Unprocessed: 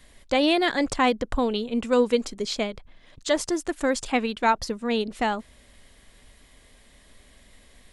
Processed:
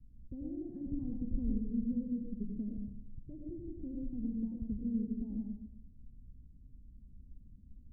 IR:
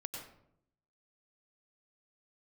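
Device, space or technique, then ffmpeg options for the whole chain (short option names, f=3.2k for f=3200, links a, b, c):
club heard from the street: -filter_complex "[0:a]alimiter=limit=-19dB:level=0:latency=1:release=132,lowpass=f=210:w=0.5412,lowpass=f=210:w=1.3066[a];[1:a]atrim=start_sample=2205[b];[a][b]afir=irnorm=-1:irlink=0,asettb=1/sr,asplit=3[c][d][e];[c]atrim=end=0.714[f];[d]atrim=start=0.71:end=1.42,asetpts=PTS-STARTPTS,afade=t=in:d=0.004:c=qsin,afade=t=out:st=0.706:d=0.004:c=qsin,equalizer=f=1.8k:w=1.4:g=14[g];[e]atrim=start=1.416[h];[f][g]acrossfade=d=0.004:c1=hsin:c2=qsin[i];[i][h]acrossfade=d=0.004:c1=qsin:c2=hsin,volume=3dB"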